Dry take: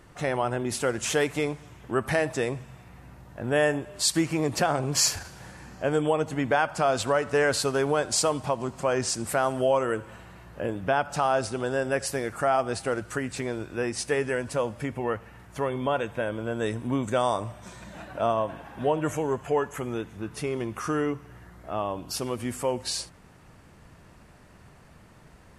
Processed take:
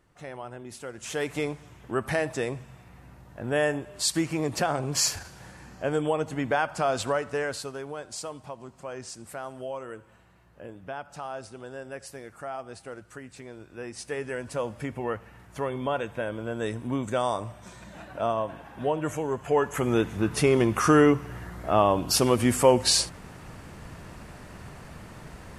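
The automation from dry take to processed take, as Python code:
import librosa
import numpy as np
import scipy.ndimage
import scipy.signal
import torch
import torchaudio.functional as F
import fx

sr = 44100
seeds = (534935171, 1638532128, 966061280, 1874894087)

y = fx.gain(x, sr, db=fx.line((0.92, -12.5), (1.34, -2.0), (7.09, -2.0), (7.83, -12.5), (13.47, -12.5), (14.73, -2.0), (19.31, -2.0), (20.02, 9.0)))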